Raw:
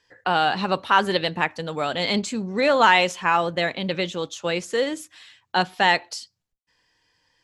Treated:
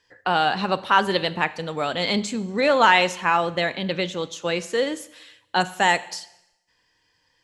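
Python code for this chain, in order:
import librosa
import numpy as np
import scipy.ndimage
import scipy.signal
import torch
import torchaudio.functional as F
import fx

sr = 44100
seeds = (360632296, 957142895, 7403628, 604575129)

y = fx.high_shelf_res(x, sr, hz=5800.0, db=7.0, q=3.0, at=(5.6, 6.1))
y = fx.rev_schroeder(y, sr, rt60_s=0.86, comb_ms=30, drr_db=16.0)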